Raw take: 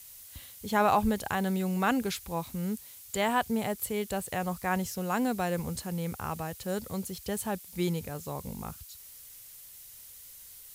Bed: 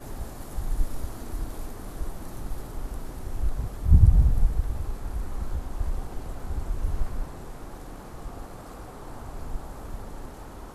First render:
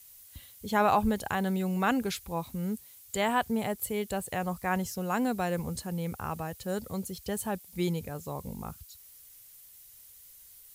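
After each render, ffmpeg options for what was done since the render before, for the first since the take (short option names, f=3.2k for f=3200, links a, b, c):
-af "afftdn=nr=6:nf=-50"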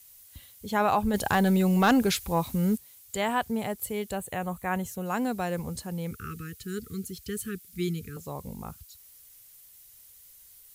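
-filter_complex "[0:a]asplit=3[a][b][c];[a]afade=t=out:st=1.13:d=0.02[d];[b]aeval=exprs='0.178*sin(PI/2*1.58*val(0)/0.178)':c=same,afade=t=in:st=1.13:d=0.02,afade=t=out:st=2.76:d=0.02[e];[c]afade=t=in:st=2.76:d=0.02[f];[d][e][f]amix=inputs=3:normalize=0,asettb=1/sr,asplit=3[g][h][i];[g]atrim=end=4.154[j];[h]atrim=start=4.15:end=5.06,asetpts=PTS-STARTPTS,afade=t=in:d=0.004:c=qsin,afade=t=out:st=0.906:d=0.004:c=qsin,equalizer=f=5.1k:w=4.5:g=-14[k];[i]atrim=start=5.056[l];[j][k]acrossfade=d=0.004:c1=hsin:c2=qsin[m];[m][l]acrossfade=d=0.004:c1=qsin:c2=hsin,asettb=1/sr,asplit=3[n][o][p];[n]atrim=end=6.114[q];[o]atrim=start=6.11:end=8.17,asetpts=PTS-STARTPTS,afade=t=in:d=0.004:c=qsin,afade=t=out:st=2.056:d=0.004:c=qsin,asuperstop=centerf=740:order=20:qfactor=0.99[r];[p]atrim=start=8.166[s];[q][r]acrossfade=d=0.004:c1=hsin:c2=qsin[t];[t][s]acrossfade=d=0.004:c1=qsin:c2=hsin"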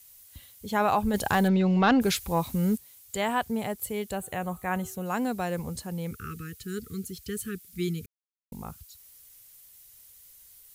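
-filter_complex "[0:a]asplit=3[a][b][c];[a]afade=t=out:st=1.47:d=0.02[d];[b]lowpass=f=4.8k:w=0.5412,lowpass=f=4.8k:w=1.3066,afade=t=in:st=1.47:d=0.02,afade=t=out:st=2:d=0.02[e];[c]afade=t=in:st=2:d=0.02[f];[d][e][f]amix=inputs=3:normalize=0,asplit=3[g][h][i];[g]afade=t=out:st=4.22:d=0.02[j];[h]bandreject=f=126.2:t=h:w=4,bandreject=f=252.4:t=h:w=4,bandreject=f=378.6:t=h:w=4,bandreject=f=504.8:t=h:w=4,bandreject=f=631:t=h:w=4,bandreject=f=757.2:t=h:w=4,bandreject=f=883.4:t=h:w=4,bandreject=f=1.0096k:t=h:w=4,bandreject=f=1.1358k:t=h:w=4,bandreject=f=1.262k:t=h:w=4,bandreject=f=1.3882k:t=h:w=4,bandreject=f=1.5144k:t=h:w=4,afade=t=in:st=4.22:d=0.02,afade=t=out:st=5.01:d=0.02[k];[i]afade=t=in:st=5.01:d=0.02[l];[j][k][l]amix=inputs=3:normalize=0,asplit=3[m][n][o];[m]atrim=end=8.06,asetpts=PTS-STARTPTS,afade=t=out:st=8.056:d=0.004:c=hsin[p];[n]atrim=start=8.06:end=8.52,asetpts=PTS-STARTPTS,volume=0[q];[o]atrim=start=8.52,asetpts=PTS-STARTPTS,afade=t=in:d=0.004:c=hsin[r];[p][q][r]concat=n=3:v=0:a=1"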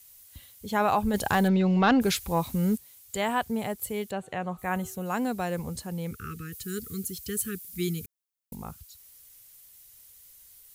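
-filter_complex "[0:a]asplit=3[a][b][c];[a]afade=t=out:st=4.1:d=0.02[d];[b]highpass=120,lowpass=4.7k,afade=t=in:st=4.1:d=0.02,afade=t=out:st=4.57:d=0.02[e];[c]afade=t=in:st=4.57:d=0.02[f];[d][e][f]amix=inputs=3:normalize=0,asettb=1/sr,asplit=3[g][h][i];[g]atrim=end=6.524[j];[h]atrim=start=6.52:end=8.55,asetpts=PTS-STARTPTS,afade=t=in:d=0.004:c=qsin,afade=t=out:st=2.026:d=0.004:c=qsin,highshelf=f=6.8k:g=10[k];[i]atrim=start=8.546[l];[j][k]acrossfade=d=0.004:c1=hsin:c2=qsin[m];[m][l]acrossfade=d=0.004:c1=qsin:c2=hsin"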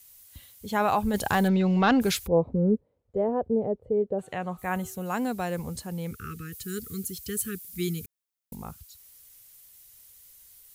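-filter_complex "[0:a]asplit=3[a][b][c];[a]afade=t=out:st=2.26:d=0.02[d];[b]lowpass=f=490:t=q:w=3.5,afade=t=in:st=2.26:d=0.02,afade=t=out:st=4.18:d=0.02[e];[c]afade=t=in:st=4.18:d=0.02[f];[d][e][f]amix=inputs=3:normalize=0"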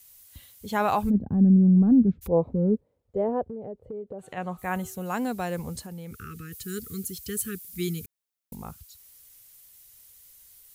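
-filter_complex "[0:a]asplit=3[a][b][c];[a]afade=t=out:st=1.09:d=0.02[d];[b]lowpass=f=230:t=q:w=2.4,afade=t=in:st=1.09:d=0.02,afade=t=out:st=2.21:d=0.02[e];[c]afade=t=in:st=2.21:d=0.02[f];[d][e][f]amix=inputs=3:normalize=0,asplit=3[g][h][i];[g]afade=t=out:st=3.43:d=0.02[j];[h]acompressor=threshold=-35dB:ratio=4:attack=3.2:release=140:knee=1:detection=peak,afade=t=in:st=3.43:d=0.02,afade=t=out:st=4.36:d=0.02[k];[i]afade=t=in:st=4.36:d=0.02[l];[j][k][l]amix=inputs=3:normalize=0,asettb=1/sr,asplit=3[m][n][o];[m]atrim=end=5.844[p];[n]atrim=start=5.84:end=6.51,asetpts=PTS-STARTPTS,afade=t=in:d=0.004:c=qsin,afade=t=out:st=0.666:d=0.004:c=qsin,acompressor=threshold=-35dB:ratio=6:attack=3.2:release=140:knee=1:detection=peak[q];[o]atrim=start=6.506[r];[p][q]acrossfade=d=0.004:c1=hsin:c2=qsin[s];[s][r]acrossfade=d=0.004:c1=qsin:c2=hsin"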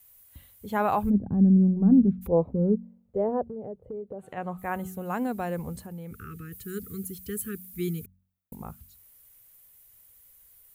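-af "equalizer=f=5.3k:t=o:w=1.8:g=-12,bandreject=f=46.14:t=h:w=4,bandreject=f=92.28:t=h:w=4,bandreject=f=138.42:t=h:w=4,bandreject=f=184.56:t=h:w=4,bandreject=f=230.7:t=h:w=4"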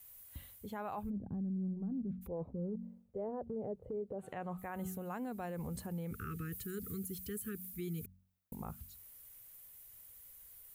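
-af "areverse,acompressor=threshold=-32dB:ratio=10,areverse,alimiter=level_in=9dB:limit=-24dB:level=0:latency=1:release=119,volume=-9dB"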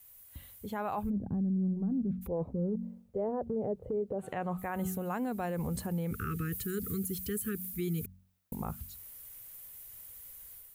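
-af "dynaudnorm=f=390:g=3:m=7dB"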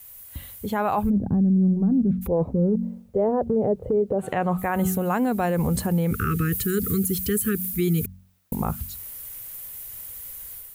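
-af "volume=11.5dB"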